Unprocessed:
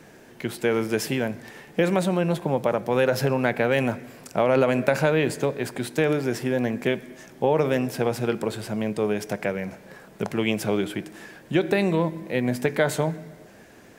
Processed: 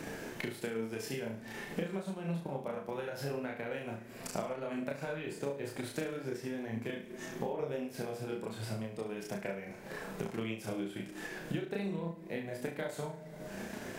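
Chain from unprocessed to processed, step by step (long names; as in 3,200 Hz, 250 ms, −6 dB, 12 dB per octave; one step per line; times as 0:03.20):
multi-voice chorus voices 4, 0.5 Hz, delay 28 ms, depth 3.1 ms
downward compressor 5 to 1, threshold −53 dBFS, peak gain reduction 30.5 dB
flutter between parallel walls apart 6.1 metres, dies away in 0.45 s
transient designer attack +4 dB, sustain −3 dB
level +11 dB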